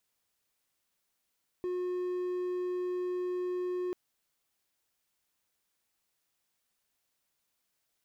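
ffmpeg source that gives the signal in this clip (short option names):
-f lavfi -i "aevalsrc='0.0355*(1-4*abs(mod(361*t+0.25,1)-0.5))':d=2.29:s=44100"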